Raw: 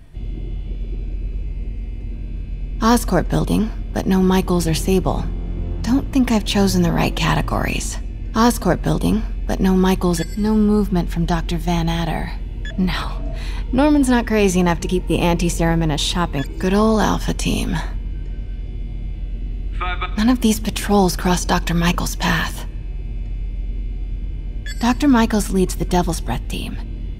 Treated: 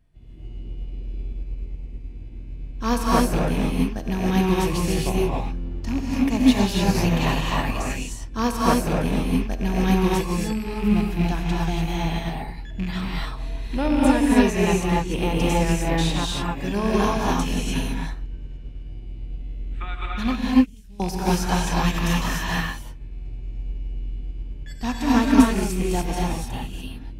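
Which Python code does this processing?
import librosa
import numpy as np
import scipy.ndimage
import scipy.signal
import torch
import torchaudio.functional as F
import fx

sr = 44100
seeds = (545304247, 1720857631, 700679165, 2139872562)

y = fx.rattle_buzz(x, sr, strikes_db=-16.0, level_db=-16.0)
y = fx.tone_stack(y, sr, knobs='10-0-1', at=(20.35, 21.0))
y = fx.rev_gated(y, sr, seeds[0], gate_ms=320, shape='rising', drr_db=-4.0)
y = fx.upward_expand(y, sr, threshold_db=-33.0, expansion=1.5)
y = y * librosa.db_to_amplitude(-5.5)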